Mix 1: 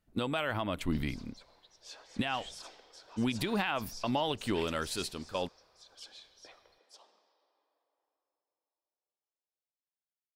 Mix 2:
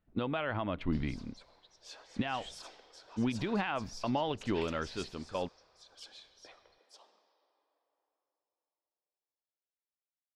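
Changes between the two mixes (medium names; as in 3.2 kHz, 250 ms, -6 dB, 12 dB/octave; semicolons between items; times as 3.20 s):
speech: add distance through air 270 m; master: add treble shelf 7.4 kHz -4.5 dB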